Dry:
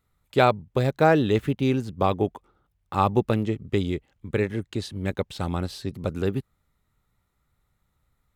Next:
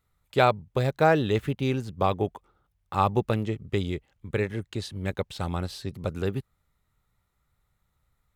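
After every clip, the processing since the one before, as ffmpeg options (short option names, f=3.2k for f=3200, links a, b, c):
-af "equalizer=f=270:w=1.3:g=-4.5,volume=-1dB"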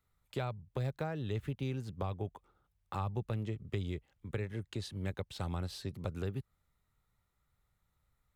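-filter_complex "[0:a]acrossover=split=130[a][b];[b]acompressor=threshold=-32dB:ratio=6[c];[a][c]amix=inputs=2:normalize=0,volume=-5dB"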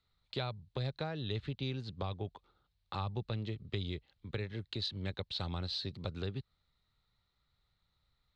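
-af "lowpass=f=4.1k:t=q:w=5.2,volume=-1.5dB"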